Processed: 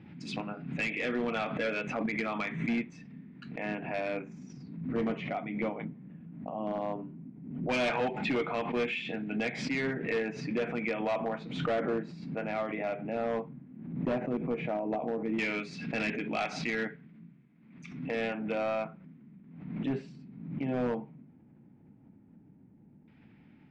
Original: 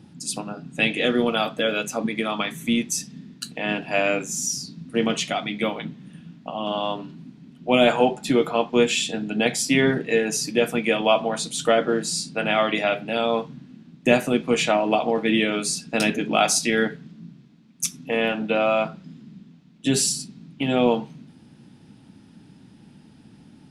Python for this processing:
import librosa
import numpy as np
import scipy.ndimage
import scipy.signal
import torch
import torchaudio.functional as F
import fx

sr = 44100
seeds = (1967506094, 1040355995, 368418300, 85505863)

y = fx.peak_eq(x, sr, hz=2200.0, db=12.5, octaves=0.58)
y = fx.rider(y, sr, range_db=4, speed_s=0.5)
y = fx.filter_lfo_lowpass(y, sr, shape='saw_down', hz=0.13, low_hz=620.0, high_hz=2700.0, q=0.74)
y = np.clip(10.0 ** (16.5 / 20.0) * y, -1.0, 1.0) / 10.0 ** (16.5 / 20.0)
y = fx.air_absorb(y, sr, metres=100.0)
y = fx.pre_swell(y, sr, db_per_s=59.0)
y = y * librosa.db_to_amplitude(-9.0)